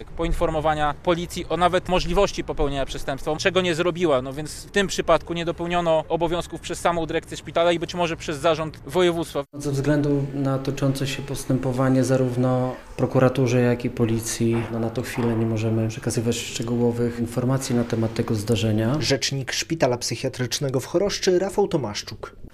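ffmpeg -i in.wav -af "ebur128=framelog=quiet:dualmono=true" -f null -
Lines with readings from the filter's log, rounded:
Integrated loudness:
  I:         -20.1 LUFS
  Threshold: -30.2 LUFS
Loudness range:
  LRA:         2.0 LU
  Threshold: -40.1 LUFS
  LRA low:   -20.9 LUFS
  LRA high:  -18.9 LUFS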